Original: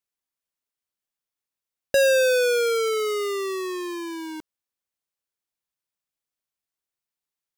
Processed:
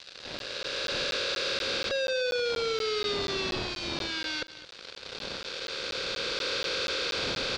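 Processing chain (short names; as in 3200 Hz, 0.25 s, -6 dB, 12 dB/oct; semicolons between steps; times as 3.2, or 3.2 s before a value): per-bin compression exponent 0.2; wind noise 570 Hz -34 dBFS; Doppler pass-by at 1.71, 9 m/s, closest 5.5 m; recorder AGC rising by 8.5 dB/s; fuzz box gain 29 dB, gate -32 dBFS; ladder low-pass 4900 Hz, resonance 55%; echo 0.219 s -16.5 dB; crackling interface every 0.24 s, samples 512, zero, from 0.39; mismatched tape noise reduction encoder only; gain -5.5 dB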